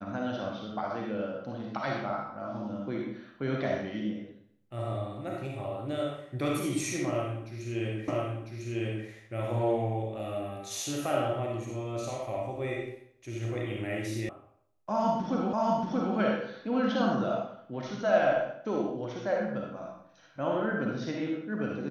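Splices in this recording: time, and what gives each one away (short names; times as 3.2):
8.08 repeat of the last 1 s
14.29 sound cut off
15.53 repeat of the last 0.63 s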